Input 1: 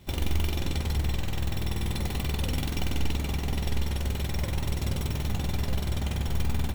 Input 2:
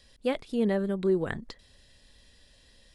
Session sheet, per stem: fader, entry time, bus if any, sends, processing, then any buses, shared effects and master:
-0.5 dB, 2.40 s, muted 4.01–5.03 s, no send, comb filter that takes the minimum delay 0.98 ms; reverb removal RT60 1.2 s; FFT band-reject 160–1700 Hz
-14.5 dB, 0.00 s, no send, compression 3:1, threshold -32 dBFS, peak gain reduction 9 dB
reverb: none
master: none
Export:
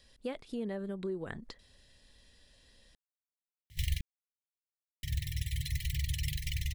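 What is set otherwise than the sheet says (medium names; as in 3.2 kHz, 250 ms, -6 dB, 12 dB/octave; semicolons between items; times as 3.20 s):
stem 1: entry 2.40 s -> 3.70 s; stem 2 -14.5 dB -> -4.0 dB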